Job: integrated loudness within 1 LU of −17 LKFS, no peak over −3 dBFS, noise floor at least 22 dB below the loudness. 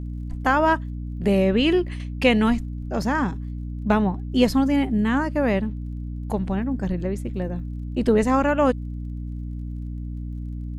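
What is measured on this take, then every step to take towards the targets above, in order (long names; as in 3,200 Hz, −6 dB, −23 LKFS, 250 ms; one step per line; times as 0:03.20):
crackle rate 36 per second; mains hum 60 Hz; hum harmonics up to 300 Hz; level of the hum −28 dBFS; integrated loudness −23.5 LKFS; sample peak −5.0 dBFS; target loudness −17.0 LKFS
→ click removal
mains-hum notches 60/120/180/240/300 Hz
level +6.5 dB
brickwall limiter −3 dBFS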